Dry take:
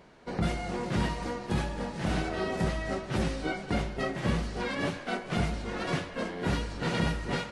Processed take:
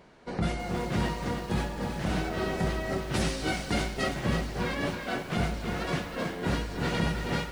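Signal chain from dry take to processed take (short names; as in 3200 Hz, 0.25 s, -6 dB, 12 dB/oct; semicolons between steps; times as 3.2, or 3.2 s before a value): 3.14–4.09 high shelf 2900 Hz +10.5 dB; lo-fi delay 0.322 s, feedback 35%, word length 8-bit, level -6.5 dB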